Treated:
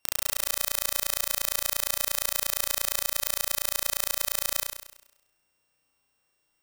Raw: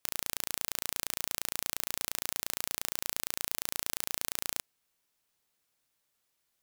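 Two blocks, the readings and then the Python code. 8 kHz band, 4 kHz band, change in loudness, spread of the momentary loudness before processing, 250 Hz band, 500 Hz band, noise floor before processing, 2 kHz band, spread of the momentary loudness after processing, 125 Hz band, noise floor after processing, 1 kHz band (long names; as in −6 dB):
+7.5 dB, +7.5 dB, +7.5 dB, 0 LU, 0.0 dB, +9.0 dB, −79 dBFS, +7.0 dB, 1 LU, +4.0 dB, −75 dBFS, +7.0 dB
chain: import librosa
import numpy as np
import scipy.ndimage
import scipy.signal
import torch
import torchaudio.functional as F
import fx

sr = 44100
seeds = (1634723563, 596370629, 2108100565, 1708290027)

y = np.r_[np.sort(x[:len(x) // 16 * 16].reshape(-1, 16), axis=1).ravel(), x[len(x) // 16 * 16:]]
y = fx.room_flutter(y, sr, wall_m=5.7, rt60_s=0.86)
y = y * librosa.db_to_amplitude(3.5)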